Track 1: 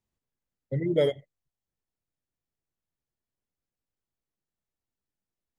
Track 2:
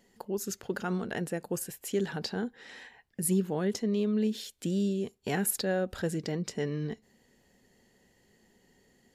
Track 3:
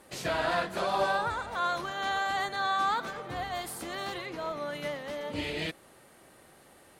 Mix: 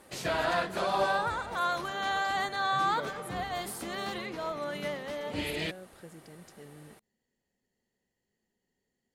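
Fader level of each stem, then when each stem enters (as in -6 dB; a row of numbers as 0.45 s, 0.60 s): -16.5 dB, -18.0 dB, 0.0 dB; 2.00 s, 0.00 s, 0.00 s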